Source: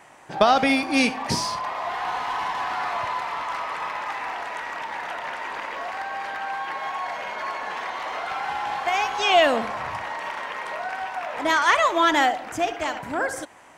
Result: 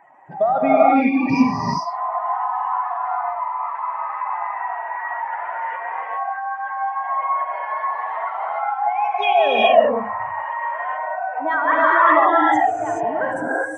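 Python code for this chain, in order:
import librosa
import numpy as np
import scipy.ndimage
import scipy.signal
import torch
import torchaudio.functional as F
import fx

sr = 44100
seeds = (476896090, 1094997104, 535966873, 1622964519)

y = fx.spec_expand(x, sr, power=2.6)
y = fx.rev_gated(y, sr, seeds[0], gate_ms=450, shape='rising', drr_db=-6.0)
y = y * 10.0 ** (-1.0 / 20.0)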